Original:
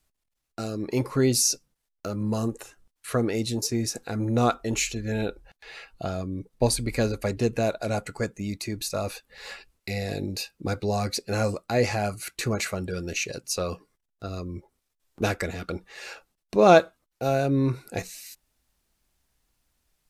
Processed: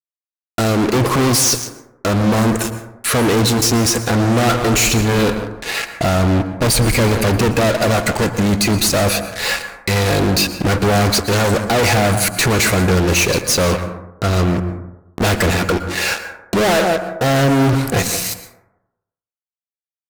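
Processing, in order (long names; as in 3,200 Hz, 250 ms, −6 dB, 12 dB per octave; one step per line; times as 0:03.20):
slap from a distant wall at 30 metres, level −22 dB
fuzz pedal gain 41 dB, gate −45 dBFS
dense smooth reverb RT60 0.91 s, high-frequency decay 0.3×, pre-delay 105 ms, DRR 9.5 dB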